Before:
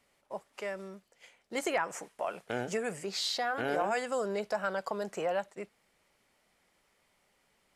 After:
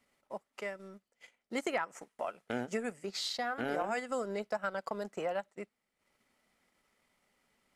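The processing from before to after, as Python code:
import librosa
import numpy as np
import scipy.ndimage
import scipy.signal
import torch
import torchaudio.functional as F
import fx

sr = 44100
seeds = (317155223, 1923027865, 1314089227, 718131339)

y = fx.small_body(x, sr, hz=(240.0, 1300.0, 2000.0), ring_ms=45, db=7)
y = fx.transient(y, sr, attack_db=2, sustain_db=-10)
y = y * 10.0 ** (-4.0 / 20.0)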